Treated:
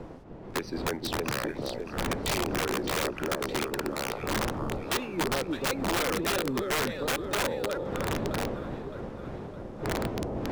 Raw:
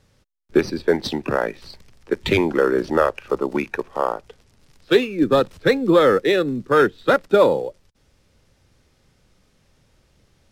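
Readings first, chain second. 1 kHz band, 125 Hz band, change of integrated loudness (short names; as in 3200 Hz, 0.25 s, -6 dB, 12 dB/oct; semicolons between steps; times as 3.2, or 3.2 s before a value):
-7.5 dB, -3.5 dB, -11.0 dB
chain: wind noise 440 Hz -30 dBFS; compressor 6:1, threshold -22 dBFS, peak gain reduction 12.5 dB; on a send: echo with dull and thin repeats by turns 0.307 s, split 880 Hz, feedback 73%, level -3.5 dB; on the sum: wrapped overs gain 17.5 dB; gain -4.5 dB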